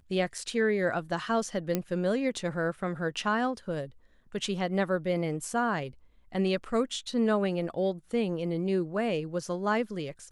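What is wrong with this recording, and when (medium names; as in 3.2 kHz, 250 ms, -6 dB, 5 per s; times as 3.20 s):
1.75 s: pop -13 dBFS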